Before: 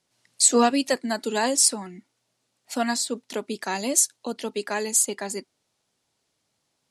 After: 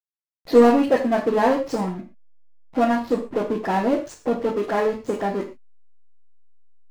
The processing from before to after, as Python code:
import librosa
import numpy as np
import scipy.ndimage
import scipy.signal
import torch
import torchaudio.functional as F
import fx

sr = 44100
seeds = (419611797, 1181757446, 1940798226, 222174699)

y = fx.spec_delay(x, sr, highs='late', ms=129)
y = scipy.signal.sosfilt(scipy.signal.butter(2, 1100.0, 'lowpass', fs=sr, output='sos'), y)
y = fx.backlash(y, sr, play_db=-45.5)
y = fx.power_curve(y, sr, exponent=0.7)
y = fx.rev_gated(y, sr, seeds[0], gate_ms=150, shape='falling', drr_db=3.0)
y = y * 10.0 ** (2.5 / 20.0)